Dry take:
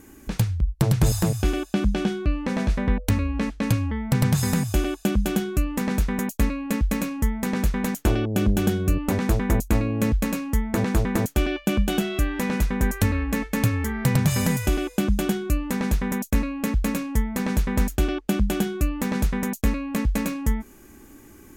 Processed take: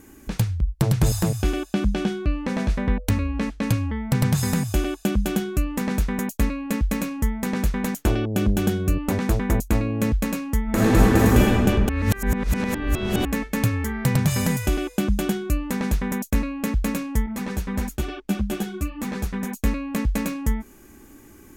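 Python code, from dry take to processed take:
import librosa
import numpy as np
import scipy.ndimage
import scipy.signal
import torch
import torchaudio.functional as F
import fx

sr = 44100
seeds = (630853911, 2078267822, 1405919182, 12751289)

y = fx.reverb_throw(x, sr, start_s=10.64, length_s=0.74, rt60_s=2.9, drr_db=-8.0)
y = fx.ensemble(y, sr, at=(17.26, 19.64))
y = fx.edit(y, sr, fx.reverse_span(start_s=11.89, length_s=1.36), tone=tone)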